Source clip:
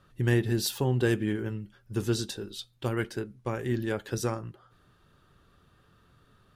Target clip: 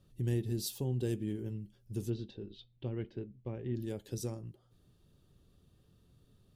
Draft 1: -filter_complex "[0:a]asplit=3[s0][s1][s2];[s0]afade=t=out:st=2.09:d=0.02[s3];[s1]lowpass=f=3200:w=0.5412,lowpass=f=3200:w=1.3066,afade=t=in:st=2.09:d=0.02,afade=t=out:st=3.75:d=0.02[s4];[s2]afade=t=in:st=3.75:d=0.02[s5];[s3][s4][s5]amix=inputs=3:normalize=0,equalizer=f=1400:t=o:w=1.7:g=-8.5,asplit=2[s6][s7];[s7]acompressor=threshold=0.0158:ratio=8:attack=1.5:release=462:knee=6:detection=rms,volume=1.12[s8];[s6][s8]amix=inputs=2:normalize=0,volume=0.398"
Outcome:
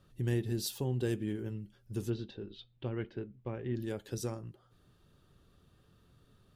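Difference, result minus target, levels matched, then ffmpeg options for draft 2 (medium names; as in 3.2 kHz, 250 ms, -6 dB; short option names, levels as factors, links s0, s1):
1 kHz band +5.0 dB
-filter_complex "[0:a]asplit=3[s0][s1][s2];[s0]afade=t=out:st=2.09:d=0.02[s3];[s1]lowpass=f=3200:w=0.5412,lowpass=f=3200:w=1.3066,afade=t=in:st=2.09:d=0.02,afade=t=out:st=3.75:d=0.02[s4];[s2]afade=t=in:st=3.75:d=0.02[s5];[s3][s4][s5]amix=inputs=3:normalize=0,equalizer=f=1400:t=o:w=1.7:g=-19,asplit=2[s6][s7];[s7]acompressor=threshold=0.0158:ratio=8:attack=1.5:release=462:knee=6:detection=rms,volume=1.12[s8];[s6][s8]amix=inputs=2:normalize=0,volume=0.398"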